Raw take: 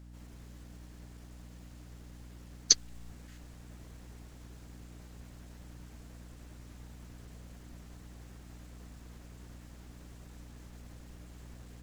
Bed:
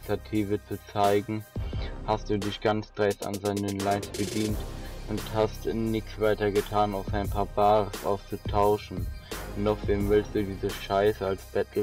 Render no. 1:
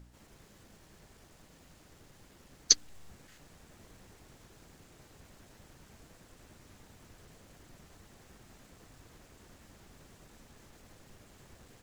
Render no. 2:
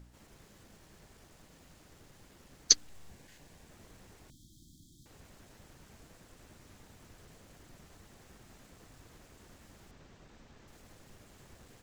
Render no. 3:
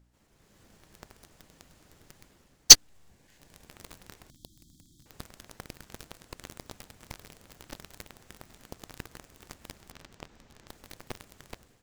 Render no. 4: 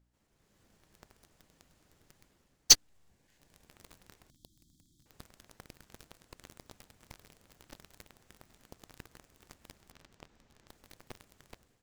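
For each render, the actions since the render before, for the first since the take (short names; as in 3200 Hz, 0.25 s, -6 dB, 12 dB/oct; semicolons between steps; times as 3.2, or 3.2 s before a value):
de-hum 60 Hz, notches 5
3.08–3.69 notch 1300 Hz, Q 5.9; 4.3–5.06 brick-wall FIR band-stop 350–3100 Hz; 9.91–10.68 running mean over 4 samples
AGC gain up to 9 dB; sample leveller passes 5
gain -8.5 dB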